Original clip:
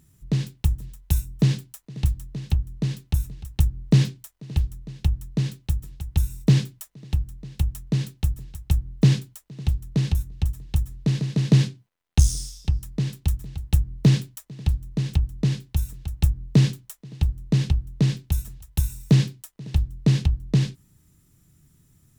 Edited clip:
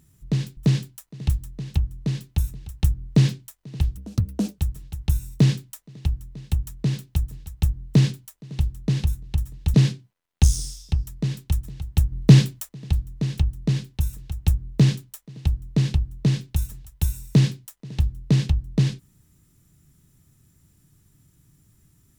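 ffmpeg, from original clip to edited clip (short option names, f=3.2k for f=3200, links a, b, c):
-filter_complex "[0:a]asplit=7[a][b][c][d][e][f][g];[a]atrim=end=0.572[h];[b]atrim=start=1.328:end=4.734[i];[c]atrim=start=4.73:end=5.66,asetpts=PTS-STARTPTS,asetrate=67032,aresample=44100,atrim=end_sample=26982,asetpts=PTS-STARTPTS[j];[d]atrim=start=5.656:end=10.822[k];[e]atrim=start=11.498:end=13.882[l];[f]atrim=start=13.878:end=14.452,asetpts=PTS-STARTPTS,volume=5.5dB[m];[g]atrim=start=14.448[n];[h][i]acrossfade=d=0.004:c1=hsin:c2=hsin[o];[o][j]acrossfade=d=0.004:c1=hsin:c2=hsin[p];[p][k]acrossfade=d=0.004:c1=hsin:c2=hsin[q];[q][l]acrossfade=d=0.004:c1=hsin:c2=hsin[r];[r][m]acrossfade=d=0.004:c1=hsin:c2=hsin[s];[s][n]acrossfade=d=0.004:c1=hsin:c2=hsin"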